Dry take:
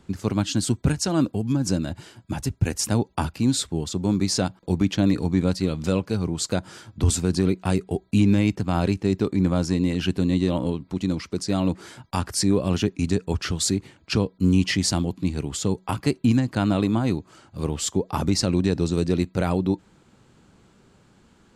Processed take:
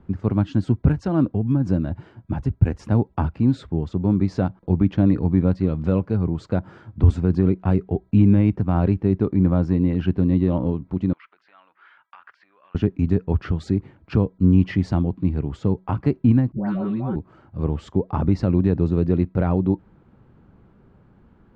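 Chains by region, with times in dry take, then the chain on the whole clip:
0:11.13–0:12.75: downward compressor, threshold −29 dBFS + Chebyshev band-pass filter 1,300–3,100 Hz
0:16.52–0:17.16: comb filter 5.3 ms, depth 85% + downward compressor 3 to 1, threshold −26 dBFS + all-pass dispersion highs, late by 147 ms, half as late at 890 Hz
whole clip: low-pass filter 1,500 Hz 12 dB per octave; low-shelf EQ 150 Hz +8 dB

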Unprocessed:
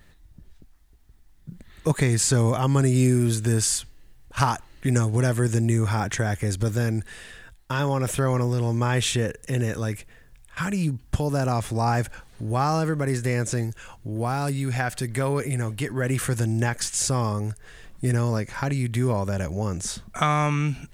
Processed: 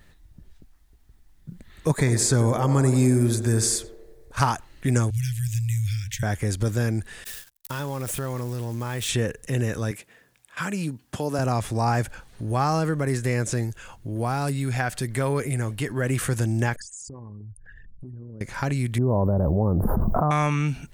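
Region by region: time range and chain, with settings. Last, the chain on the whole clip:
0:01.89–0:04.42: parametric band 2,900 Hz −13 dB 0.22 octaves + feedback echo with a band-pass in the loop 91 ms, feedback 73%, band-pass 540 Hz, level −7.5 dB
0:05.10–0:06.23: inverse Chebyshev band-stop filter 260–1,100 Hz, stop band 50 dB + linearly interpolated sample-rate reduction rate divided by 2×
0:07.24–0:09.09: spike at every zero crossing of −25 dBFS + noise gate −35 dBFS, range −37 dB + downward compressor 2 to 1, threshold −30 dBFS
0:09.91–0:11.39: high-pass filter 200 Hz + de-essing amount 25%
0:16.76–0:18.41: spectral envelope exaggerated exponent 3 + downward compressor 8 to 1, threshold −37 dBFS
0:18.98–0:20.31: inverse Chebyshev band-stop filter 2,500–8,500 Hz, stop band 60 dB + envelope flattener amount 100%
whole clip: no processing

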